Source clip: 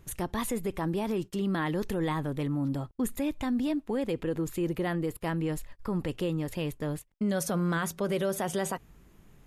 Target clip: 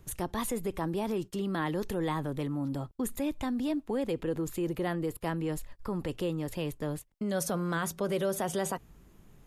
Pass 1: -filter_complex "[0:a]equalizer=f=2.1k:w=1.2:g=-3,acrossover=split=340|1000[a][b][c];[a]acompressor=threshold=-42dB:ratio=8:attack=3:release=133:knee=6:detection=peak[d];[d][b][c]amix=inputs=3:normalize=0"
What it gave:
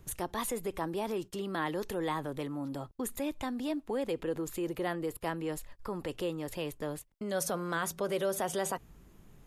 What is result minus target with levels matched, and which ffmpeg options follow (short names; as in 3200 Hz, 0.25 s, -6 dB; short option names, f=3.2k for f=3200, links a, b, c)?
compressor: peak gain reduction +9 dB
-filter_complex "[0:a]equalizer=f=2.1k:w=1.2:g=-3,acrossover=split=340|1000[a][b][c];[a]acompressor=threshold=-31.5dB:ratio=8:attack=3:release=133:knee=6:detection=peak[d];[d][b][c]amix=inputs=3:normalize=0"